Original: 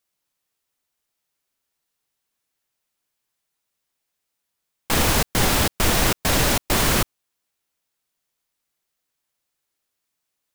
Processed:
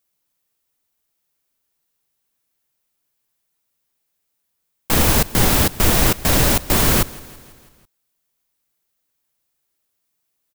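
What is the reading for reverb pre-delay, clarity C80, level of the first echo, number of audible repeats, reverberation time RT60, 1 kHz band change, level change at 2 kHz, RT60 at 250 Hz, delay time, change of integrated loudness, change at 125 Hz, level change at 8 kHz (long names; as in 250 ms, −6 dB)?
no reverb audible, no reverb audible, −21.0 dB, 4, no reverb audible, +1.0 dB, +0.5 dB, no reverb audible, 165 ms, +4.0 dB, +4.5 dB, +3.0 dB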